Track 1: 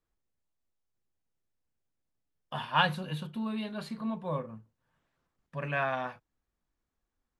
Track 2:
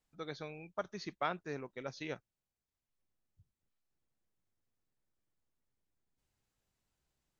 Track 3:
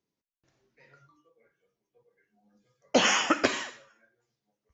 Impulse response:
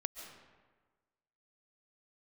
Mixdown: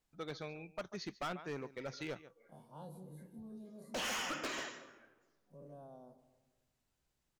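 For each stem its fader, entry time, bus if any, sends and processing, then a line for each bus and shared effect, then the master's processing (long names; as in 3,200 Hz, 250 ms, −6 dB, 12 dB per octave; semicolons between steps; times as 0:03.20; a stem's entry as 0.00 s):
−17.0 dB, 0.00 s, bus A, send −5.5 dB, echo send −16.5 dB, every bin's largest magnitude spread in time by 60 ms; Chebyshev band-stop filter 400–9,500 Hz, order 2
+0.5 dB, 0.00 s, no bus, no send, echo send −18 dB, no processing
−2.5 dB, 1.00 s, bus A, send −16 dB, echo send −18.5 dB, no processing
bus A: 0.0 dB, high-pass filter 180 Hz 12 dB per octave; downward compressor 1.5 to 1, threshold −50 dBFS, peak gain reduction 11 dB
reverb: on, RT60 1.4 s, pre-delay 100 ms
echo: single-tap delay 141 ms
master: gain into a clipping stage and back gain 36 dB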